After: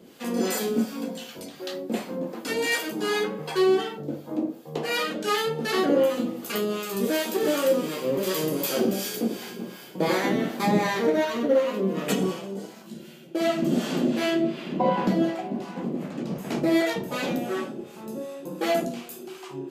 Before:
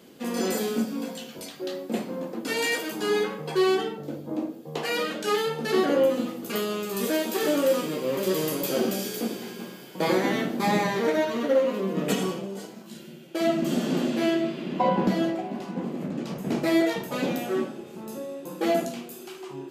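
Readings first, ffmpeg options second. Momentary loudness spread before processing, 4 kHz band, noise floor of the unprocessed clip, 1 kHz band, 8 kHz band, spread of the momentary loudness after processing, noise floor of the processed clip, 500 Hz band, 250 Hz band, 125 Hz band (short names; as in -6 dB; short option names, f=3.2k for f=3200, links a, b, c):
13 LU, +1.0 dB, -44 dBFS, 0.0 dB, +1.0 dB, 13 LU, -45 dBFS, +0.5 dB, +0.5 dB, +1.0 dB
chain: -filter_complex "[0:a]acrossover=split=660[a][b];[a]aeval=exprs='val(0)*(1-0.7/2+0.7/2*cos(2*PI*2.7*n/s))':c=same[c];[b]aeval=exprs='val(0)*(1-0.7/2-0.7/2*cos(2*PI*2.7*n/s))':c=same[d];[c][d]amix=inputs=2:normalize=0,volume=4dB"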